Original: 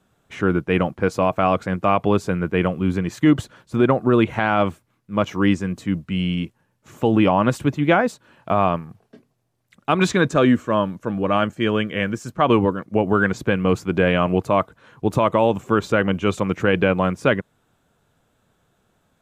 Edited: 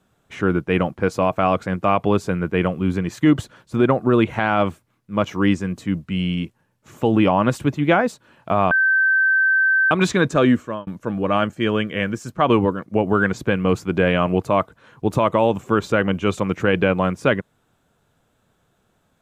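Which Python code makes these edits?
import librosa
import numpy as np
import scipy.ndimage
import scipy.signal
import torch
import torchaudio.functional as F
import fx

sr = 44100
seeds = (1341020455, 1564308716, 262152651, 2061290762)

y = fx.edit(x, sr, fx.bleep(start_s=8.71, length_s=1.2, hz=1550.0, db=-13.5),
    fx.fade_out_span(start_s=10.54, length_s=0.33), tone=tone)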